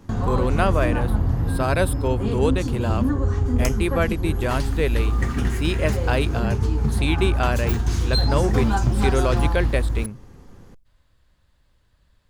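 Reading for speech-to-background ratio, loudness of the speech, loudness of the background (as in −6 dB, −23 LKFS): −2.5 dB, −26.0 LKFS, −23.5 LKFS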